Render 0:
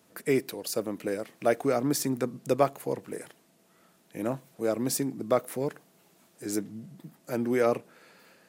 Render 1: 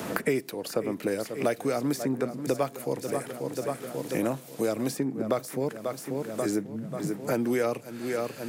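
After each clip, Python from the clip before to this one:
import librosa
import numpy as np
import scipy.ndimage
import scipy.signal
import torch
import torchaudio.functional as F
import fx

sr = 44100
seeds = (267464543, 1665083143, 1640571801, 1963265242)

y = fx.echo_feedback(x, sr, ms=538, feedback_pct=52, wet_db=-13.5)
y = fx.band_squash(y, sr, depth_pct=100)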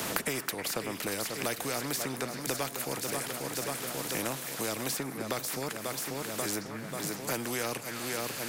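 y = fx.echo_stepped(x, sr, ms=318, hz=1600.0, octaves=1.4, feedback_pct=70, wet_db=-9.5)
y = fx.spectral_comp(y, sr, ratio=2.0)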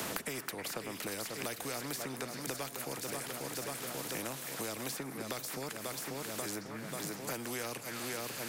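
y = fx.band_squash(x, sr, depth_pct=70)
y = y * 10.0 ** (-6.0 / 20.0)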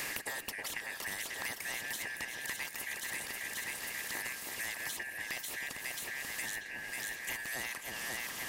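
y = fx.band_shuffle(x, sr, order='2143')
y = fx.low_shelf(y, sr, hz=150.0, db=-7.5)
y = 10.0 ** (-21.5 / 20.0) * np.tanh(y / 10.0 ** (-21.5 / 20.0))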